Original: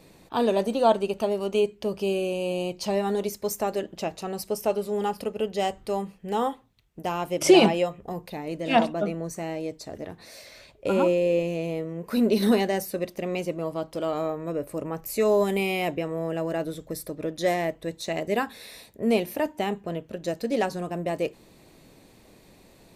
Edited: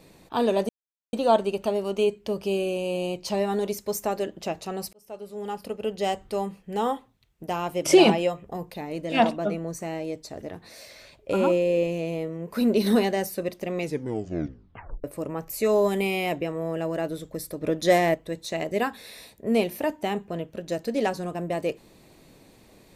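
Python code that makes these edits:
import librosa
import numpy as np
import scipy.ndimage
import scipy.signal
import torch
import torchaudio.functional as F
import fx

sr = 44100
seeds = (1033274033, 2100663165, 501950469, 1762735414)

y = fx.edit(x, sr, fx.insert_silence(at_s=0.69, length_s=0.44),
    fx.fade_in_span(start_s=4.49, length_s=1.08),
    fx.tape_stop(start_s=13.32, length_s=1.28),
    fx.clip_gain(start_s=17.17, length_s=0.53, db=5.0), tone=tone)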